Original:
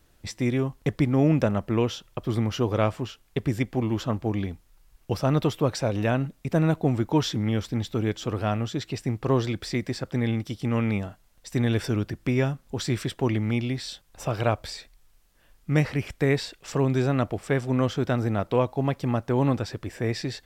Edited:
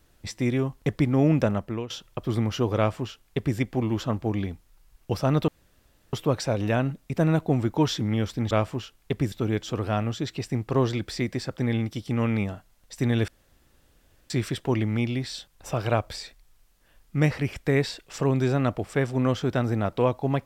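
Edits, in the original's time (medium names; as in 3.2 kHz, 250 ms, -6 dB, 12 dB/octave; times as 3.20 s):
1.51–1.90 s: fade out, to -16 dB
2.77–3.58 s: copy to 7.86 s
5.48 s: insert room tone 0.65 s
11.82–12.84 s: room tone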